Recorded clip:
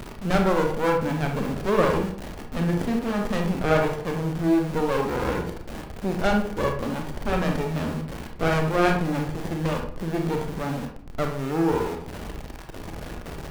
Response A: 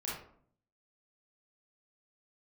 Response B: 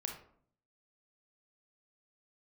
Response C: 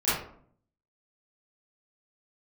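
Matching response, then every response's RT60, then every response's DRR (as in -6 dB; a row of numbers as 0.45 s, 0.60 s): B; 0.60 s, 0.60 s, 0.60 s; -7.0 dB, 2.0 dB, -14.0 dB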